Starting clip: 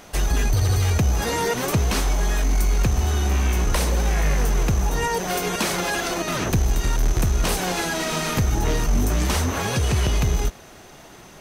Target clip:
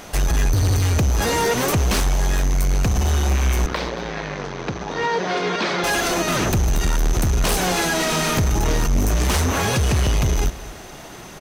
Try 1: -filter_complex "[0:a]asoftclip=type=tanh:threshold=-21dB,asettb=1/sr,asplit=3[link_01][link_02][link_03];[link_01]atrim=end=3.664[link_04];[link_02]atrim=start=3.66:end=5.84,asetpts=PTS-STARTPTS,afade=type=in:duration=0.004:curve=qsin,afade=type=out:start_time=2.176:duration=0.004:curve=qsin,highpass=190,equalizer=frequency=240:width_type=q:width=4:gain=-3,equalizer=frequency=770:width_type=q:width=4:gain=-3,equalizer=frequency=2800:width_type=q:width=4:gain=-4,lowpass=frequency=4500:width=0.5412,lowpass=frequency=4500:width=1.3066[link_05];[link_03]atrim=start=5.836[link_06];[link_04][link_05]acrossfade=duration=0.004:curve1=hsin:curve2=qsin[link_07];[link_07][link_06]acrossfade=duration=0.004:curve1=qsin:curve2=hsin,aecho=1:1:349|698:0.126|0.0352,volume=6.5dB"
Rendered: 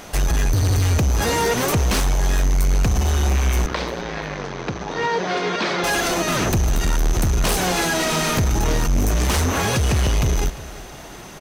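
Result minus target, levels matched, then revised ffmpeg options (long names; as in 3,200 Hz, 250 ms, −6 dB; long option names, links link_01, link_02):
echo 125 ms late
-filter_complex "[0:a]asoftclip=type=tanh:threshold=-21dB,asettb=1/sr,asplit=3[link_01][link_02][link_03];[link_01]atrim=end=3.664[link_04];[link_02]atrim=start=3.66:end=5.84,asetpts=PTS-STARTPTS,afade=type=in:duration=0.004:curve=qsin,afade=type=out:start_time=2.176:duration=0.004:curve=qsin,highpass=190,equalizer=frequency=240:width_type=q:width=4:gain=-3,equalizer=frequency=770:width_type=q:width=4:gain=-3,equalizer=frequency=2800:width_type=q:width=4:gain=-4,lowpass=frequency=4500:width=0.5412,lowpass=frequency=4500:width=1.3066[link_05];[link_03]atrim=start=5.836[link_06];[link_04][link_05]acrossfade=duration=0.004:curve1=hsin:curve2=qsin[link_07];[link_07][link_06]acrossfade=duration=0.004:curve1=qsin:curve2=hsin,aecho=1:1:224|448:0.126|0.0352,volume=6.5dB"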